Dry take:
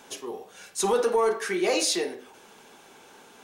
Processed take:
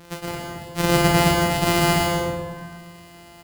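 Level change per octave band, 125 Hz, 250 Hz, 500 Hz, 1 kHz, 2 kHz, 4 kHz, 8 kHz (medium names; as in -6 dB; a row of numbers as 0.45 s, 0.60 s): no reading, +11.0 dB, +1.5 dB, +8.5 dB, +9.5 dB, +6.5 dB, +1.5 dB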